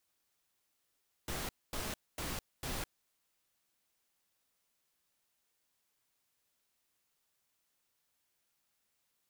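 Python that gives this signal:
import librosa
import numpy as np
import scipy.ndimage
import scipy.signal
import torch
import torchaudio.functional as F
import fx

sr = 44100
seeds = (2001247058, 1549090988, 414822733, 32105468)

y = fx.noise_burst(sr, seeds[0], colour='pink', on_s=0.21, off_s=0.24, bursts=4, level_db=-39.0)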